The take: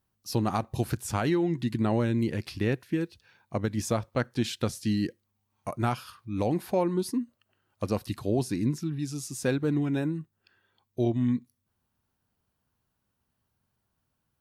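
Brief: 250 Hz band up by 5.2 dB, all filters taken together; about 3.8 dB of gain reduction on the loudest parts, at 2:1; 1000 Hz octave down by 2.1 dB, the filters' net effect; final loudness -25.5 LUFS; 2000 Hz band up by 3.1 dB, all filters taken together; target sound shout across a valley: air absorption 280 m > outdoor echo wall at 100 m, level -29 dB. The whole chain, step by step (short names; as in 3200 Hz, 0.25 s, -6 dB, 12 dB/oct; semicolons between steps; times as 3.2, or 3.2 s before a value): bell 250 Hz +7 dB; bell 1000 Hz -4 dB; bell 2000 Hz +8.5 dB; compressor 2:1, threshold -24 dBFS; air absorption 280 m; outdoor echo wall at 100 m, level -29 dB; gain +3.5 dB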